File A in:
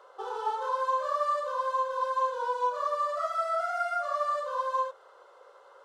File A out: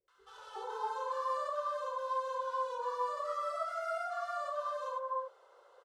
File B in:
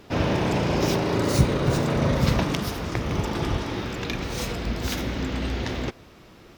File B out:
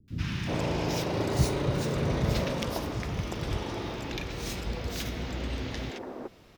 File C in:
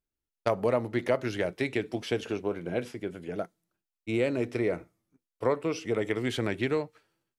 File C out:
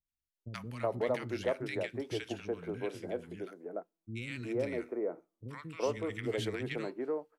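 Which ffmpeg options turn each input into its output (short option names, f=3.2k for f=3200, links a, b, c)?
-filter_complex "[0:a]acrossover=split=240|1300[a][b][c];[c]adelay=80[d];[b]adelay=370[e];[a][e][d]amix=inputs=3:normalize=0,volume=-5dB"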